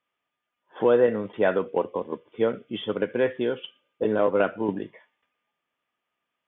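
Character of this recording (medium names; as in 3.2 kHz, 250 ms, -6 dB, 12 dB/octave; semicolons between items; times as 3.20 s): noise floor -84 dBFS; spectral tilt -4.5 dB/octave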